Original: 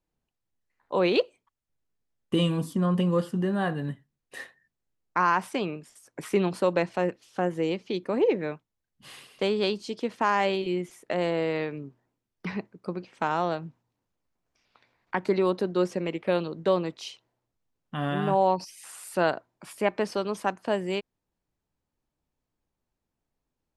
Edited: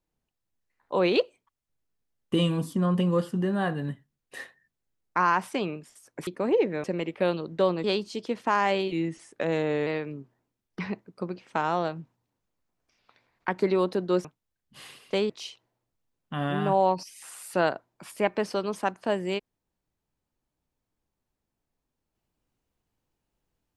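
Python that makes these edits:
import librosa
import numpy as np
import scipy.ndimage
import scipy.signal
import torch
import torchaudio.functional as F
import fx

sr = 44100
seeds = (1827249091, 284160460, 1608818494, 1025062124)

y = fx.edit(x, sr, fx.cut(start_s=6.27, length_s=1.69),
    fx.swap(start_s=8.53, length_s=1.05, other_s=15.91, other_length_s=1.0),
    fx.speed_span(start_s=10.65, length_s=0.88, speed=0.92), tone=tone)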